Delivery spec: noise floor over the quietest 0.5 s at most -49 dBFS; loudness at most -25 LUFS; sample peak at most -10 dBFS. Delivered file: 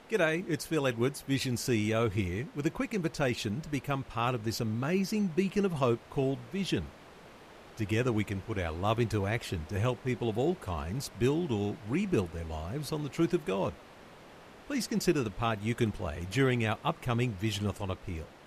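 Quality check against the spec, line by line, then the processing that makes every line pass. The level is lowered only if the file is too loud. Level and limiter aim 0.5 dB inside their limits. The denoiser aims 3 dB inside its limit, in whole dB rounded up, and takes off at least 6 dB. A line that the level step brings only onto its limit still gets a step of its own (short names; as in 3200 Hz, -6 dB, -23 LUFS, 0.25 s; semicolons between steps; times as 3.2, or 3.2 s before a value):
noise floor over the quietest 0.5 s -52 dBFS: OK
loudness -32.0 LUFS: OK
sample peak -14.5 dBFS: OK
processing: none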